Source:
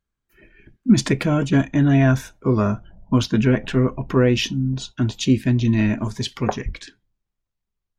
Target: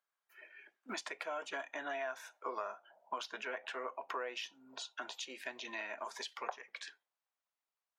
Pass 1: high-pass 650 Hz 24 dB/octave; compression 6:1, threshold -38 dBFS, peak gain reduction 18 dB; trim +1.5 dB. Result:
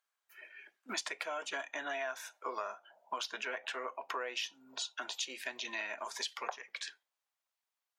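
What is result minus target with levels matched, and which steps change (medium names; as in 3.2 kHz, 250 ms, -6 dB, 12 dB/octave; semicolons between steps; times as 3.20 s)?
4 kHz band +2.5 dB
add after compression: treble shelf 2.4 kHz -8.5 dB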